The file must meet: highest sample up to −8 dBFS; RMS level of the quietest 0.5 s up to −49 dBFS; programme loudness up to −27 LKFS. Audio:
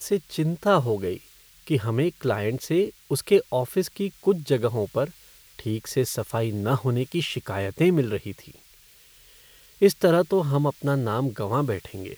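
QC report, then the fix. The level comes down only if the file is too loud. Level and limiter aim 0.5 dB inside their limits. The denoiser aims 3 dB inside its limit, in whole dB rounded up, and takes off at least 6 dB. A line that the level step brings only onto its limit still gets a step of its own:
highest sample −6.5 dBFS: out of spec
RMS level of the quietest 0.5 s −54 dBFS: in spec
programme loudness −25.0 LKFS: out of spec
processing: level −2.5 dB

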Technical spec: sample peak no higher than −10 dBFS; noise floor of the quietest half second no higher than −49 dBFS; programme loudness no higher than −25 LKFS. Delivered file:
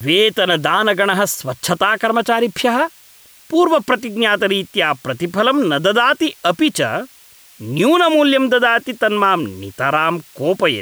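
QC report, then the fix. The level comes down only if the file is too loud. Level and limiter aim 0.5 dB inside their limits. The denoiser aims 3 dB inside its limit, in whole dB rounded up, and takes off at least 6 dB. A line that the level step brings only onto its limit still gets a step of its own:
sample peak −3.5 dBFS: out of spec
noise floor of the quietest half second −46 dBFS: out of spec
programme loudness −16.0 LKFS: out of spec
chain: level −9.5 dB

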